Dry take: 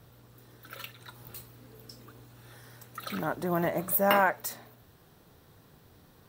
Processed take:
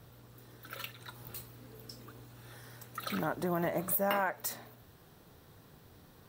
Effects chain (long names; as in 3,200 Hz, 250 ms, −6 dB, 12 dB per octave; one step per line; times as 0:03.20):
downward compressor 3 to 1, threshold −29 dBFS, peak gain reduction 8.5 dB